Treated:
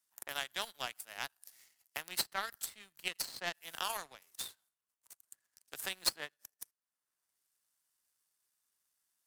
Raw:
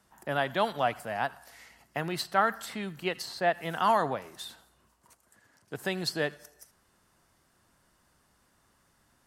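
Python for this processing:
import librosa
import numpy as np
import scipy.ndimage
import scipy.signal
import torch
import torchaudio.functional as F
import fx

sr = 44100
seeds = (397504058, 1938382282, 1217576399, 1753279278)

y = F.preemphasis(torch.from_numpy(x), 0.97).numpy()
y = fx.power_curve(y, sr, exponent=2.0)
y = fx.band_squash(y, sr, depth_pct=70)
y = y * librosa.db_to_amplitude(17.0)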